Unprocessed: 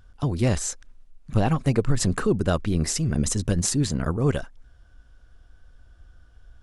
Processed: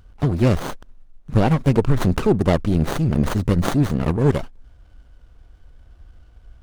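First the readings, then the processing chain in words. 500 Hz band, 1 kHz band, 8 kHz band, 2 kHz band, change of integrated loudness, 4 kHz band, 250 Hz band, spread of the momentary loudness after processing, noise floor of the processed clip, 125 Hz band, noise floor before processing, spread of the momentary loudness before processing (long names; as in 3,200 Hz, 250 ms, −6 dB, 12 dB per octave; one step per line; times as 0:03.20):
+5.5 dB, +5.5 dB, −12.0 dB, +3.5 dB, +4.5 dB, −1.5 dB, +5.5 dB, 5 LU, −49 dBFS, +5.0 dB, −54 dBFS, 5 LU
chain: windowed peak hold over 17 samples
level +5.5 dB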